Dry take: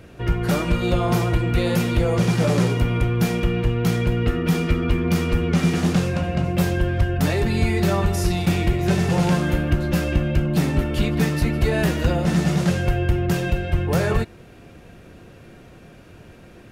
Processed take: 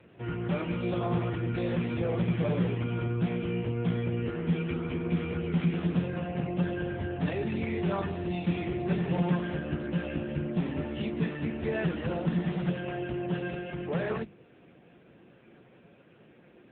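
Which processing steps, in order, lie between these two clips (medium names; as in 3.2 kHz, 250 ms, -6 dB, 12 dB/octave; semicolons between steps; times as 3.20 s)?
peaking EQ 88 Hz -3.5 dB 0.55 oct, from 12.35 s -14.5 dB; hum notches 50/100/150/200/250/300 Hz; trim -7 dB; AMR-NB 6.7 kbps 8 kHz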